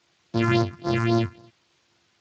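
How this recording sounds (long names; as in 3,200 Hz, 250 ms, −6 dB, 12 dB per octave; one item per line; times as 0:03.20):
a buzz of ramps at a fixed pitch in blocks of 128 samples
phaser sweep stages 4, 3.7 Hz, lowest notch 540–2,600 Hz
a quantiser's noise floor 10 bits, dither triangular
Speex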